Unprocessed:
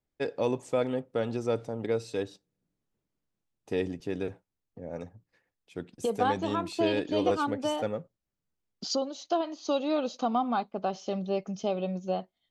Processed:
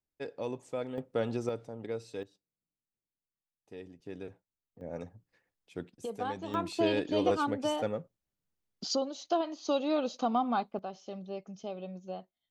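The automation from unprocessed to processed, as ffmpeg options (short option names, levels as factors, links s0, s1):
-af "asetnsamples=n=441:p=0,asendcmd='0.98 volume volume -1.5dB;1.49 volume volume -8dB;2.23 volume volume -16.5dB;4.06 volume volume -10dB;4.81 volume volume -2dB;5.89 volume volume -9dB;6.54 volume volume -1.5dB;10.79 volume volume -10dB',volume=0.376"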